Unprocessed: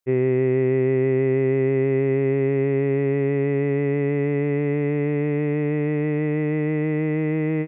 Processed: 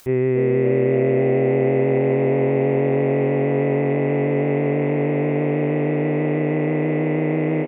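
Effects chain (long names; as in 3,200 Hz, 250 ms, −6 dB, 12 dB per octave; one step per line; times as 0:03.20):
on a send: echo with shifted repeats 283 ms, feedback 59%, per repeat +95 Hz, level −7 dB
on the sum: upward compression, threshold −25 dBFS
level +1 dB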